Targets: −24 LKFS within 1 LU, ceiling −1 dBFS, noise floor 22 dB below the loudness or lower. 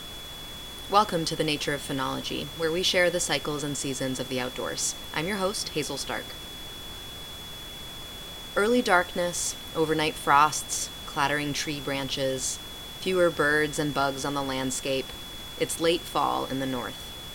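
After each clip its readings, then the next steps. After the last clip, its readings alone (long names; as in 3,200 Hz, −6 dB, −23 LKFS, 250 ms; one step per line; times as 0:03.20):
interfering tone 3,400 Hz; level of the tone −40 dBFS; background noise floor −40 dBFS; target noise floor −49 dBFS; integrated loudness −27.0 LKFS; sample peak −5.5 dBFS; target loudness −24.0 LKFS
→ notch filter 3,400 Hz, Q 30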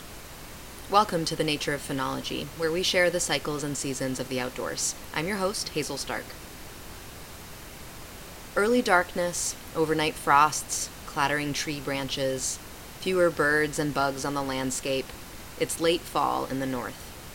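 interfering tone none found; background noise floor −43 dBFS; target noise floor −49 dBFS
→ noise reduction from a noise print 6 dB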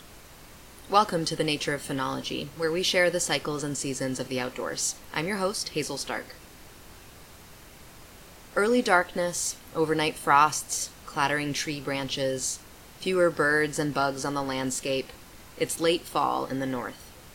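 background noise floor −49 dBFS; integrated loudness −27.0 LKFS; sample peak −6.0 dBFS; target loudness −24.0 LKFS
→ level +3 dB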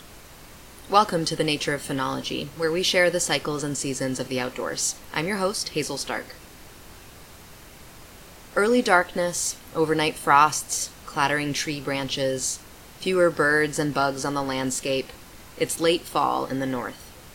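integrated loudness −24.0 LKFS; sample peak −3.0 dBFS; background noise floor −46 dBFS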